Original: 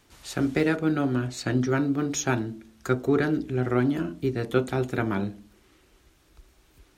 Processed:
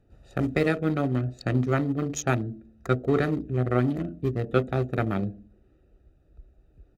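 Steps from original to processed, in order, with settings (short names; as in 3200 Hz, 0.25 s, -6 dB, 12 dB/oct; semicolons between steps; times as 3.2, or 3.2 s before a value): Wiener smoothing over 41 samples; notch 5400 Hz, Q 13; comb 1.6 ms, depth 36%; gain +1.5 dB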